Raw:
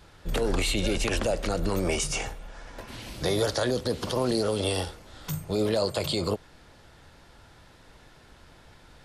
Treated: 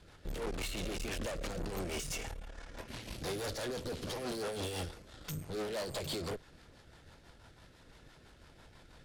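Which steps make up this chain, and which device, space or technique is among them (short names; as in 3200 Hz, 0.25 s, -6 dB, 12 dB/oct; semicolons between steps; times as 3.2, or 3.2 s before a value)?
overdriven rotary cabinet (tube stage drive 36 dB, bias 0.75; rotary speaker horn 6 Hz); gain +1.5 dB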